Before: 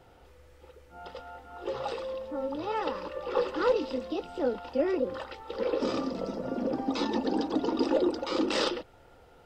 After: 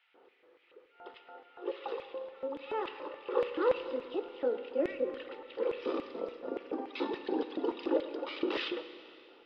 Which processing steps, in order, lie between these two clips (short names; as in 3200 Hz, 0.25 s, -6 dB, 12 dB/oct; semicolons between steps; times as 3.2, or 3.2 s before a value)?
speaker cabinet 120–3600 Hz, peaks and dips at 160 Hz -7 dB, 650 Hz -4 dB, 1100 Hz +3 dB; LFO high-pass square 3.5 Hz 370–2300 Hz; Schroeder reverb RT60 2.5 s, combs from 31 ms, DRR 10 dB; gain -6.5 dB